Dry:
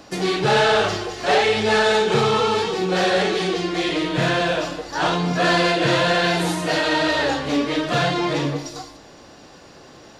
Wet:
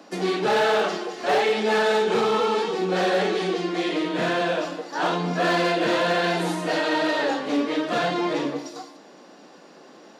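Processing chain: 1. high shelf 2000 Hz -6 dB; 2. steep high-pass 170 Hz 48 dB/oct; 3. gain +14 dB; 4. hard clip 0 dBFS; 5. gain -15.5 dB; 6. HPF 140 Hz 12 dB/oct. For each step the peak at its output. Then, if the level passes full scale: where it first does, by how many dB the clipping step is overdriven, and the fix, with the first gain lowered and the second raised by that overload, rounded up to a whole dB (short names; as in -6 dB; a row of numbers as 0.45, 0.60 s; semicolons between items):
-8.0, -7.0, +7.0, 0.0, -15.5, -12.0 dBFS; step 3, 7.0 dB; step 3 +7 dB, step 5 -8.5 dB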